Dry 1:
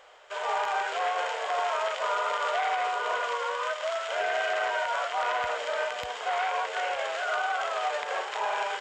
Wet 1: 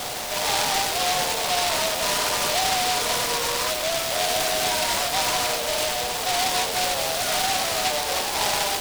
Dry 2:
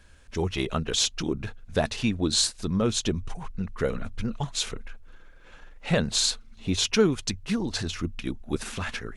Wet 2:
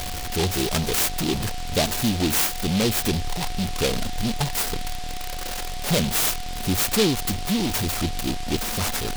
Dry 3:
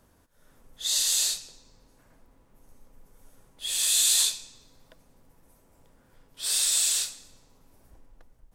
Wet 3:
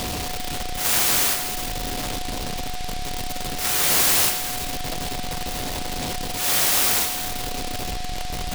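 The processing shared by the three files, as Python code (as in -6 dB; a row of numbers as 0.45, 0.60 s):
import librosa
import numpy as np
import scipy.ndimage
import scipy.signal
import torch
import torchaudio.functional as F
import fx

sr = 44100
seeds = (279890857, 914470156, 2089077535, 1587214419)

y = x + 0.5 * 10.0 ** (-26.5 / 20.0) * np.sign(x)
y = fx.dynamic_eq(y, sr, hz=850.0, q=2.3, threshold_db=-40.0, ratio=4.0, max_db=4)
y = 10.0 ** (-14.5 / 20.0) * np.tanh(y / 10.0 ** (-14.5 / 20.0))
y = y + 10.0 ** (-36.0 / 20.0) * np.sin(2.0 * np.pi * 730.0 * np.arange(len(y)) / sr)
y = fx.noise_mod_delay(y, sr, seeds[0], noise_hz=3400.0, depth_ms=0.18)
y = y * 10.0 ** (-24 / 20.0) / np.sqrt(np.mean(np.square(y)))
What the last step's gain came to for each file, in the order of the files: 0.0, +1.5, +4.5 dB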